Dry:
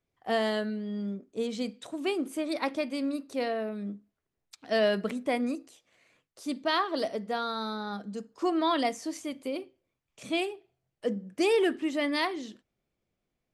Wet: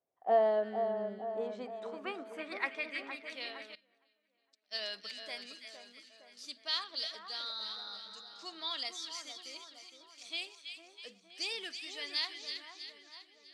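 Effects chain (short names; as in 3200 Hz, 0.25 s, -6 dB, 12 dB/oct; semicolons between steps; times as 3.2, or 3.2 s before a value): band-pass sweep 670 Hz -> 4600 Hz, 1.13–3.84; on a send: split-band echo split 1600 Hz, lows 0.462 s, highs 0.324 s, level -7 dB; 3.75–4.79 on the sum: upward expander 2.5:1, over -53 dBFS; gain +3.5 dB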